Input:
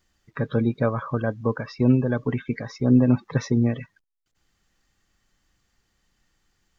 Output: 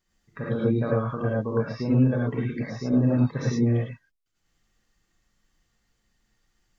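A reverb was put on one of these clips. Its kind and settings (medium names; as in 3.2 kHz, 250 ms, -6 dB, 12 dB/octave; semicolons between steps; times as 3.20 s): gated-style reverb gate 130 ms rising, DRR -5 dB; trim -8.5 dB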